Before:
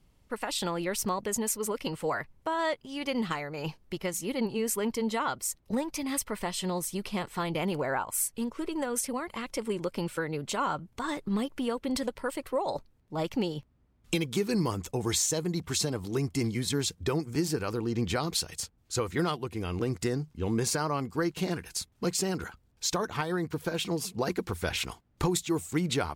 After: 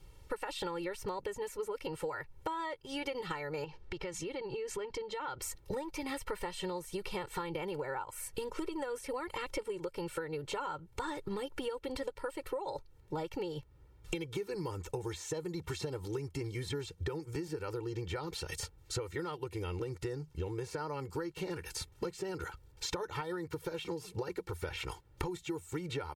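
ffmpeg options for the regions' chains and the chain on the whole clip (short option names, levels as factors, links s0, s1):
-filter_complex "[0:a]asettb=1/sr,asplit=3[s0][s1][s2];[s0]atrim=end=3.644[s3];[s1]atrim=start=3.64:end=5.42,asetpts=PTS-STARTPTS,afade=t=in:d=0.004:c=qsin,afade=t=out:st=1.776:d=0.004:c=qsin,lowpass=4600,acompressor=threshold=0.00891:ratio=12:attack=3.2:release=140:knee=1:detection=peak[s4];[s2]atrim=start=5.416[s5];[s3][s4]acrossfade=d=0.004:c1=hsin:c2=qsin[s6];[s6][s5]acrossfade=d=0.004:c1=qsin:c2=hsin,acrossover=split=2800[s7][s8];[s8]acompressor=threshold=0.00562:ratio=4:attack=1:release=60[s9];[s7][s9]amix=inputs=2:normalize=0,aecho=1:1:2.2:0.93,acompressor=threshold=0.0112:ratio=16,volume=1.68"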